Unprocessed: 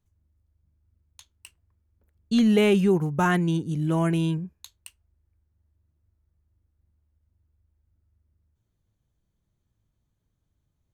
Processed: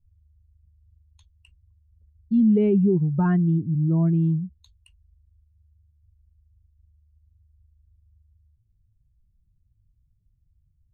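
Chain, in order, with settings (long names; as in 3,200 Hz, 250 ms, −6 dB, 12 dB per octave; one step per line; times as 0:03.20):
expanding power law on the bin magnitudes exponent 1.7
RIAA equalisation playback
level −5.5 dB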